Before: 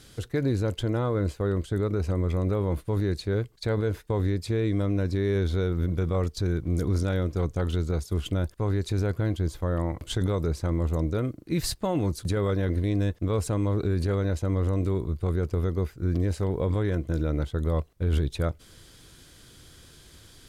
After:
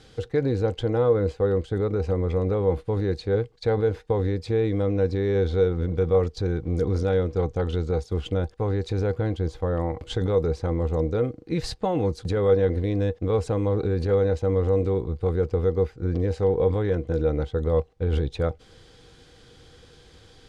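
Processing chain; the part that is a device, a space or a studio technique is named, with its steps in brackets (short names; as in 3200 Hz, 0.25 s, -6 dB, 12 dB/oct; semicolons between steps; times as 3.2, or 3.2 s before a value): inside a cardboard box (LPF 5200 Hz 12 dB/oct; small resonant body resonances 480/780 Hz, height 15 dB, ringing for 95 ms)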